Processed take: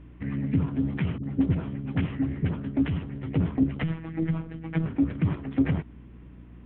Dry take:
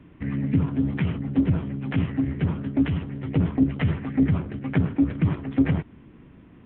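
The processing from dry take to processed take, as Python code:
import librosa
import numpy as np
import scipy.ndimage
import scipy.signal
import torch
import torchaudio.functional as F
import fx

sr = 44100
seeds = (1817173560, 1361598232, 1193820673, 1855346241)

y = fx.dispersion(x, sr, late='highs', ms=53.0, hz=400.0, at=(1.18, 2.56))
y = fx.robotise(y, sr, hz=162.0, at=(3.83, 4.86))
y = fx.add_hum(y, sr, base_hz=60, snr_db=20)
y = F.gain(torch.from_numpy(y), -3.0).numpy()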